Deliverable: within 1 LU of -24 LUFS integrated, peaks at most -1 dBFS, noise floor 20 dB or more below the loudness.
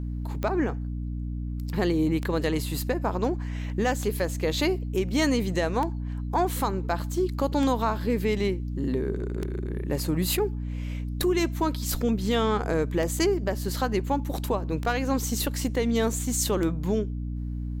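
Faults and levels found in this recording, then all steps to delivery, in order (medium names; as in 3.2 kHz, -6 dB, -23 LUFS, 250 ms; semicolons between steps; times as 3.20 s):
clicks found 10; hum 60 Hz; highest harmonic 300 Hz; hum level -29 dBFS; loudness -27.5 LUFS; peak level -10.5 dBFS; loudness target -24.0 LUFS
-> de-click; de-hum 60 Hz, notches 5; trim +3.5 dB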